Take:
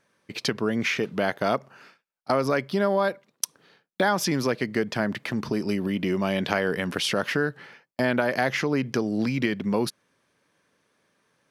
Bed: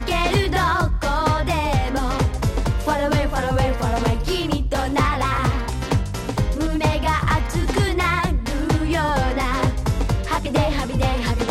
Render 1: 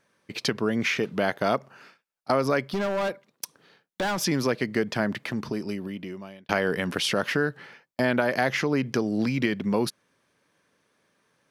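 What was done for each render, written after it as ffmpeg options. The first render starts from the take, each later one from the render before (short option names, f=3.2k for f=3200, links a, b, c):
-filter_complex "[0:a]asettb=1/sr,asplit=3[a][b][c];[a]atrim=end=2.724[d];[b]atrim=start=2.72:end=4.23,asetpts=PTS-STARTPTS,afade=t=in:d=0.004:c=qsin,afade=t=out:st=1.506:d=0.004:c=qsin,volume=23.5dB,asoftclip=hard,volume=-23.5dB[e];[c]atrim=start=4.226[f];[d][e]acrossfade=d=0.004:c1=hsin:c2=qsin[g];[g][f]acrossfade=d=0.004:c1=qsin:c2=hsin,asplit=2[h][i];[h]atrim=end=6.49,asetpts=PTS-STARTPTS,afade=t=out:st=5.07:d=1.42[j];[i]atrim=start=6.49,asetpts=PTS-STARTPTS,afade=t=in:d=0.004:c=hsin[k];[j][k]concat=n=2:v=0:a=1"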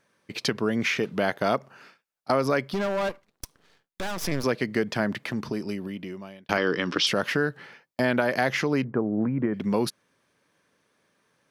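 -filter_complex "[0:a]asettb=1/sr,asplit=3[a][b][c];[a]atrim=end=3.094[d];[b]atrim=start=3.09:end=4.44,asetpts=PTS-STARTPTS,afade=t=in:d=0.004:c=qsin,afade=t=out:st=1.346:d=0.004:c=qsin,aeval=exprs='max(val(0),0)':c=same[e];[c]atrim=start=4.436[f];[d][e]acrossfade=d=0.004:c1=hsin:c2=qsin[g];[g][f]acrossfade=d=0.004:c1=qsin:c2=hsin,asettb=1/sr,asplit=3[h][i][j];[h]atrim=end=6.574[k];[i]atrim=start=6.57:end=7.07,asetpts=PTS-STARTPTS,afade=t=in:d=0.004:c=qsin,afade=t=out:st=0.496:d=0.004:c=qsin,highpass=130,equalizer=f=220:t=q:w=4:g=-4,equalizer=f=310:t=q:w=4:g=9,equalizer=f=710:t=q:w=4:g=-6,equalizer=f=1.2k:t=q:w=4:g=7,equalizer=f=3.3k:t=q:w=4:g=5,equalizer=f=5.3k:t=q:w=4:g=9,lowpass=f=6k:w=0.5412,lowpass=f=6k:w=1.3066[l];[j]atrim=start=7.066[m];[k][l]acrossfade=d=0.004:c1=hsin:c2=qsin[n];[n][m]acrossfade=d=0.004:c1=qsin:c2=hsin,asettb=1/sr,asplit=3[o][p][q];[o]atrim=end=8.844[r];[p]atrim=start=8.84:end=9.54,asetpts=PTS-STARTPTS,afade=t=in:d=0.004:c=qsin,afade=t=out:st=0.696:d=0.004:c=qsin,lowpass=f=1.4k:w=0.5412,lowpass=f=1.4k:w=1.3066[s];[q]atrim=start=9.536[t];[r][s]acrossfade=d=0.004:c1=hsin:c2=qsin[u];[u][t]acrossfade=d=0.004:c1=qsin:c2=hsin"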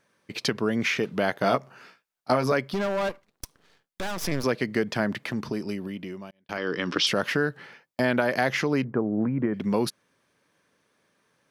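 -filter_complex "[0:a]asettb=1/sr,asplit=3[a][b][c];[a]atrim=end=1.414[d];[b]atrim=start=1.41:end=2.52,asetpts=PTS-STARTPTS,afade=t=in:d=0.004:c=qsin,afade=t=out:st=1.106:d=0.004:c=qsin,asplit=2[e][f];[f]adelay=16,volume=-5.5dB[g];[e][g]amix=inputs=2:normalize=0,atrim=end_sample=48951[h];[c]atrim=start=2.516[i];[d][h]acrossfade=d=0.004:c1=hsin:c2=qsin[j];[j][i]acrossfade=d=0.004:c1=qsin:c2=hsin,asplit=2[k][l];[k]atrim=end=6.31,asetpts=PTS-STARTPTS,afade=t=out:st=6.306:d=0.004:c=hsin[m];[l]atrim=start=6.31,asetpts=PTS-STARTPTS,afade=t=in:d=0.6[n];[m][n]concat=n=2:v=0:a=1"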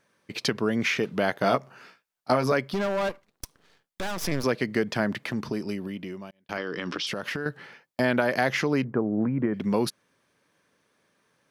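-filter_complex "[0:a]asettb=1/sr,asplit=3[a][b][c];[a]atrim=end=6.604[d];[b]atrim=start=6.6:end=7.46,asetpts=PTS-STARTPTS,afade=t=in:d=0.004:c=qsin,afade=t=out:st=0.856:d=0.004:c=qsin,acompressor=threshold=-27dB:ratio=6:attack=3.2:release=140:knee=1:detection=peak[e];[c]atrim=start=7.456[f];[d][e]acrossfade=d=0.004:c1=hsin:c2=qsin[g];[g][f]acrossfade=d=0.004:c1=qsin:c2=hsin"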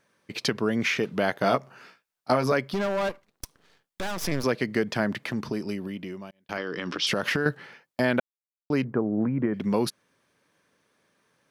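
-filter_complex "[0:a]asettb=1/sr,asplit=3[a][b][c];[a]atrim=end=7.024[d];[b]atrim=start=7.02:end=7.55,asetpts=PTS-STARTPTS,afade=t=in:d=0.004:c=qsin,afade=t=out:st=0.526:d=0.004:c=qsin,acontrast=45[e];[c]atrim=start=7.546[f];[d][e]acrossfade=d=0.004:c1=hsin:c2=qsin[g];[g][f]acrossfade=d=0.004:c1=qsin:c2=hsin,asplit=3[h][i][j];[h]atrim=end=8.2,asetpts=PTS-STARTPTS,afade=t=out:st=8.196:d=0.004:c=hsin[k];[i]atrim=start=8.2:end=8.7,asetpts=PTS-STARTPTS,volume=0[l];[j]atrim=start=8.7,asetpts=PTS-STARTPTS,afade=t=in:d=0.004:c=hsin[m];[k][l][m]concat=n=3:v=0:a=1"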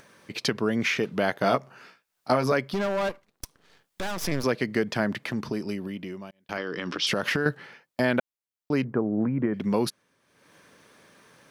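-af "acompressor=mode=upward:threshold=-43dB:ratio=2.5"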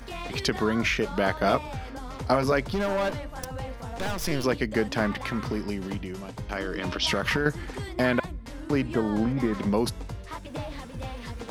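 -filter_complex "[1:a]volume=-16dB[a];[0:a][a]amix=inputs=2:normalize=0"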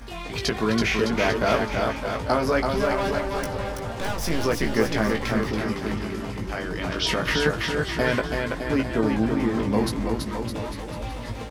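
-filter_complex "[0:a]asplit=2[a][b];[b]adelay=18,volume=-5dB[c];[a][c]amix=inputs=2:normalize=0,aecho=1:1:330|610.5|848.9|1052|1224:0.631|0.398|0.251|0.158|0.1"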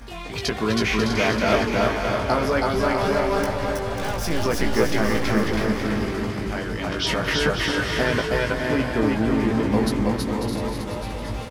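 -af "aecho=1:1:320|544|700.8|810.6|887.4:0.631|0.398|0.251|0.158|0.1"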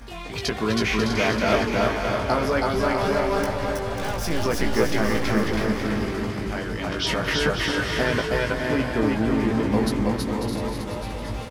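-af "volume=-1dB"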